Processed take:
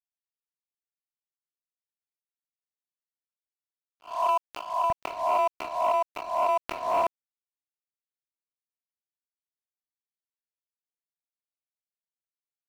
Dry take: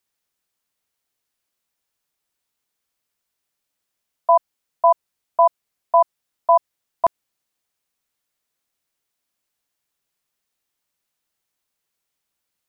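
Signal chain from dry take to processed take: spectral swells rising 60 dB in 0.56 s; HPF 1200 Hz 12 dB/oct, from 4.9 s 170 Hz; limiter -9 dBFS, peak gain reduction 6 dB; compressor 6:1, threshold -22 dBFS, peak gain reduction 9 dB; crossover distortion -45.5 dBFS; tremolo triangle 0.77 Hz, depth 30%; soft clip -24 dBFS, distortion -14 dB; sustainer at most 59 dB/s; gain +5.5 dB

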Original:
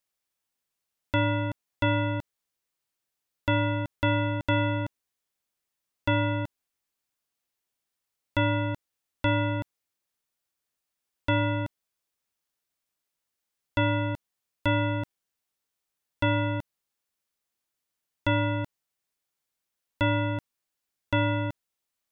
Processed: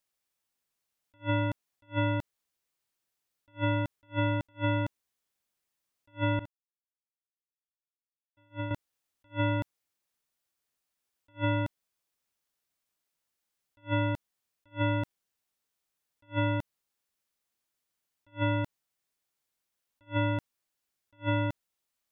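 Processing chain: 6.39–8.71 expander -21 dBFS; attack slew limiter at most 340 dB/s

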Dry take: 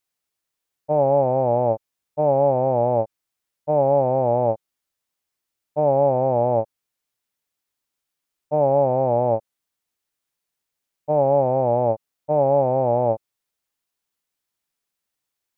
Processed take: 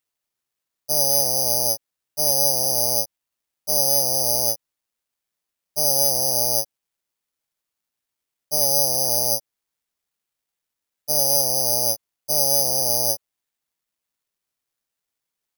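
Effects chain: careless resampling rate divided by 8×, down none, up zero stuff; gain -10.5 dB

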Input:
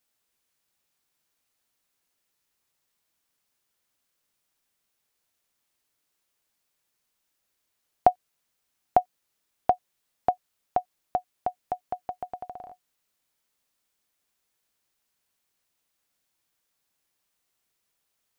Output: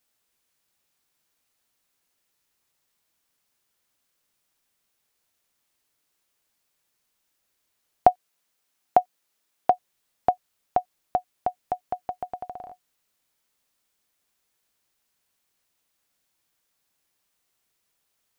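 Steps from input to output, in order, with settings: 8.08–9.73 HPF 200 Hz 6 dB/oct; gain +2.5 dB

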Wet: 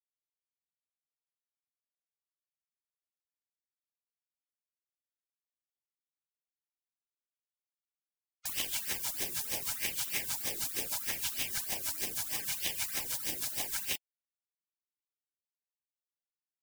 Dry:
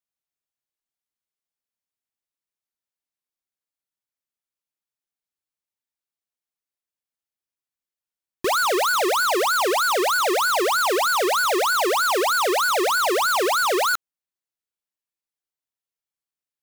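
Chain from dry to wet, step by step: Schroeder reverb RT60 0.34 s, combs from 31 ms, DRR 13 dB; expander -12 dBFS; limiter -32 dBFS, peak gain reduction 4 dB; companded quantiser 2-bit; spectral gate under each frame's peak -30 dB weak; LFO bell 0.75 Hz 340–3100 Hz +8 dB; gain +5 dB

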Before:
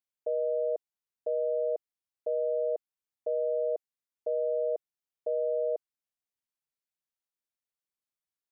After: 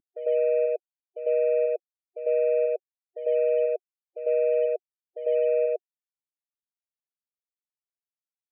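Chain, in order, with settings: CVSD 16 kbps; loudest bins only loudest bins 16; bell 300 Hz +9 dB 1.5 oct; reverse echo 0.1 s -8.5 dB

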